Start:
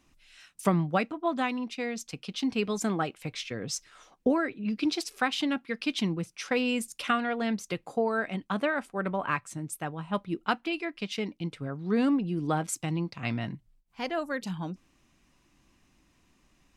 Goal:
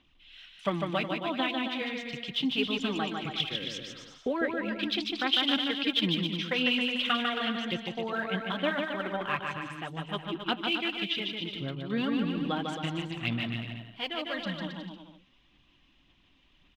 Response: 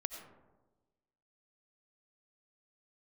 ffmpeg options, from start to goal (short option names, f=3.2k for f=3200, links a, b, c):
-af "lowpass=f=3.3k:t=q:w=5.7,aphaser=in_gain=1:out_gain=1:delay=3.8:decay=0.48:speed=1.8:type=sinusoidal,aecho=1:1:150|270|366|442.8|504.2:0.631|0.398|0.251|0.158|0.1,volume=-6dB"